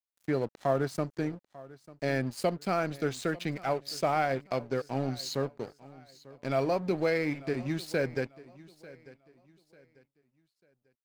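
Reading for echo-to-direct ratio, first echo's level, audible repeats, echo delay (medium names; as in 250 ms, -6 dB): -19.5 dB, -20.0 dB, 2, 894 ms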